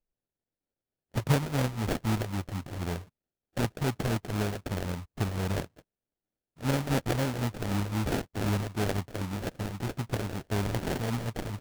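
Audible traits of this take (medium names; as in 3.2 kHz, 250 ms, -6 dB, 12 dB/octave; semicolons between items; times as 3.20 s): a buzz of ramps at a fixed pitch in blocks of 8 samples; phasing stages 2, 3.9 Hz, lowest notch 220–4000 Hz; aliases and images of a low sample rate 1.1 kHz, jitter 20%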